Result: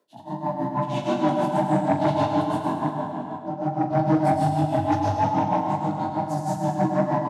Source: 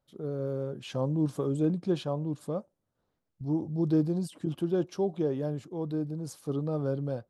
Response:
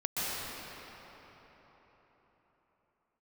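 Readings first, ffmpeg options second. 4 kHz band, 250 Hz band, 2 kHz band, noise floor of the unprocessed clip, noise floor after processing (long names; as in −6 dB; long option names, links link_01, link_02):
+7.0 dB, +6.0 dB, +15.5 dB, −82 dBFS, −36 dBFS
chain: -filter_complex "[0:a]aeval=exprs='val(0)*sin(2*PI*370*n/s)':channel_layout=same,asplit=2[link_01][link_02];[link_02]asoftclip=type=hard:threshold=-25.5dB,volume=-6dB[link_03];[link_01][link_03]amix=inputs=2:normalize=0[link_04];[1:a]atrim=start_sample=2205,asetrate=61740,aresample=44100[link_05];[link_04][link_05]afir=irnorm=-1:irlink=0,flanger=delay=18:depth=4.3:speed=2.4,bandreject=frequency=1100:width=6.2,tremolo=f=6.3:d=0.92,aecho=1:1:105|210|315|420|525|630|735:0.398|0.223|0.125|0.0699|0.0392|0.0219|0.0123,afreqshift=94,aeval=exprs='0.211*sin(PI/2*1.78*val(0)/0.211)':channel_layout=same,areverse,acompressor=mode=upward:threshold=-26dB:ratio=2.5,areverse,highpass=130,asplit=2[link_06][link_07];[link_07]adelay=41,volume=-11dB[link_08];[link_06][link_08]amix=inputs=2:normalize=0"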